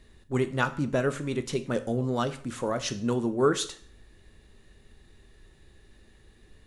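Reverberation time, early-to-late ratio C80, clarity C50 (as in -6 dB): 0.50 s, 19.0 dB, 15.0 dB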